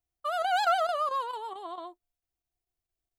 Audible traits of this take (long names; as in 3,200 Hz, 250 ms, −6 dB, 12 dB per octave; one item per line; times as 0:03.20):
chopped level 4.5 Hz, depth 60%, duty 90%